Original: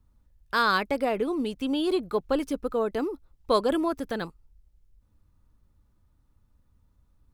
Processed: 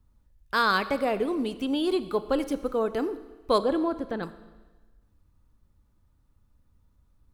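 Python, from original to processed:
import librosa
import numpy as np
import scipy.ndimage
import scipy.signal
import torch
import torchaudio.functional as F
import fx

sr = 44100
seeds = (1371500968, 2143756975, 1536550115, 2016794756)

y = fx.lowpass(x, sr, hz=1400.0, slope=6, at=(3.58, 4.23))
y = fx.rev_schroeder(y, sr, rt60_s=1.3, comb_ms=28, drr_db=13.0)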